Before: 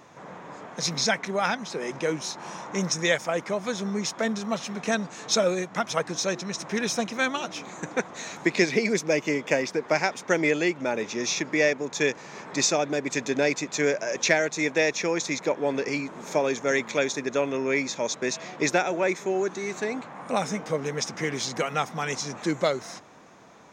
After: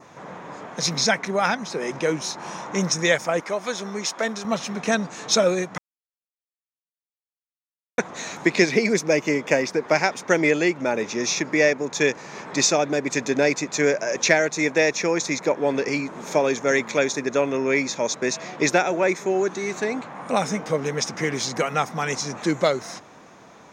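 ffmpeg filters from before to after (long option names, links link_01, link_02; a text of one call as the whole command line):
ffmpeg -i in.wav -filter_complex "[0:a]asettb=1/sr,asplit=3[link_01][link_02][link_03];[link_01]atrim=end=3.404[link_04];[link_02]atrim=start=3.4:end=4.45,asetpts=PTS-STARTPTS,afade=type=in:duration=0.004:curve=qsin,afade=type=out:start_time=1.046:duration=0.004:curve=qsin,equalizer=frequency=120:width_type=o:width=2:gain=-13.5[link_05];[link_03]atrim=start=4.446[link_06];[link_04][link_05]acrossfade=duration=0.004:curve1=hsin:curve2=qsin[link_07];[link_07][link_06]acrossfade=duration=0.004:curve1=qsin:curve2=hsin,asplit=3[link_08][link_09][link_10];[link_08]atrim=end=5.78,asetpts=PTS-STARTPTS,afade=type=out:start_time=5.776:duration=0.004:curve=hsin[link_11];[link_09]atrim=start=5.78:end=7.98,asetpts=PTS-STARTPTS,volume=0[link_12];[link_10]atrim=start=7.98,asetpts=PTS-STARTPTS,afade=type=in:duration=0.004:curve=hsin[link_13];[link_11][link_12][link_13]concat=n=3:v=0:a=1,adynamicequalizer=threshold=0.00501:dfrequency=3200:dqfactor=2.6:tfrequency=3200:tqfactor=2.6:attack=5:release=100:ratio=0.375:range=2.5:mode=cutabove:tftype=bell,bandreject=frequency=7600:width=23,volume=4dB" out.wav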